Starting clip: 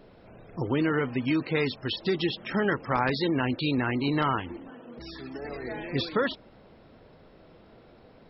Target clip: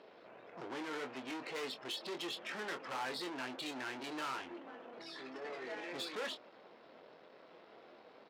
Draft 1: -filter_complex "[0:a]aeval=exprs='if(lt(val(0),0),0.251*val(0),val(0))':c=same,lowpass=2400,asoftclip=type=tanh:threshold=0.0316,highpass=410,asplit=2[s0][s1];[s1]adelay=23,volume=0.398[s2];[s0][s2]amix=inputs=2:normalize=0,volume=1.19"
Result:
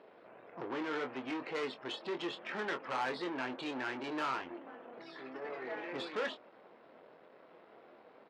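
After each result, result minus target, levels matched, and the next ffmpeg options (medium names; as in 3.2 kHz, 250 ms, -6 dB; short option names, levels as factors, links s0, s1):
4 kHz band -5.0 dB; saturation: distortion -4 dB
-filter_complex "[0:a]aeval=exprs='if(lt(val(0),0),0.251*val(0),val(0))':c=same,lowpass=5200,asoftclip=type=tanh:threshold=0.0316,highpass=410,asplit=2[s0][s1];[s1]adelay=23,volume=0.398[s2];[s0][s2]amix=inputs=2:normalize=0,volume=1.19"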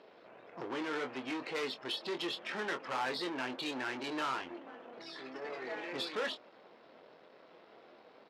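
saturation: distortion -4 dB
-filter_complex "[0:a]aeval=exprs='if(lt(val(0),0),0.251*val(0),val(0))':c=same,lowpass=5200,asoftclip=type=tanh:threshold=0.0133,highpass=410,asplit=2[s0][s1];[s1]adelay=23,volume=0.398[s2];[s0][s2]amix=inputs=2:normalize=0,volume=1.19"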